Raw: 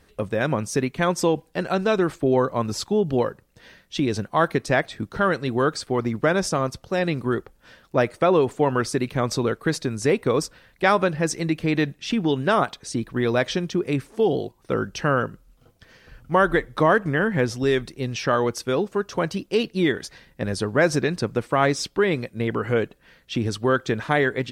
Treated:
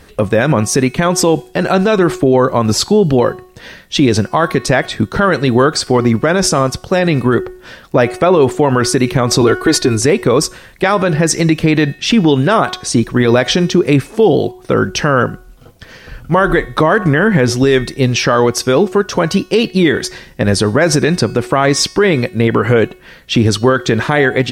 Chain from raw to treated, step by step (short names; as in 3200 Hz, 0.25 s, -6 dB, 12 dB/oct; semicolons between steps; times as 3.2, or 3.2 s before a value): 9.41–10.01 comb 2.8 ms, depth 95%; de-hum 367.3 Hz, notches 36; maximiser +16 dB; gain -1 dB